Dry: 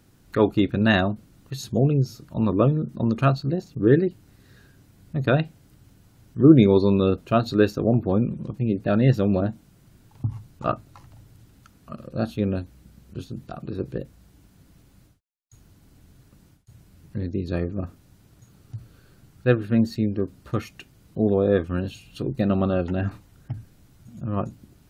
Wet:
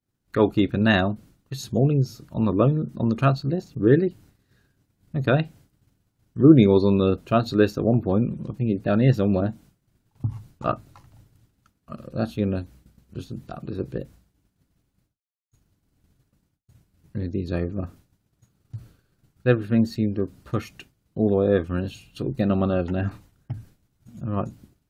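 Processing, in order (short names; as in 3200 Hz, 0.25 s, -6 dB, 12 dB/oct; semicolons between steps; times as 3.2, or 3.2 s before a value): expander -43 dBFS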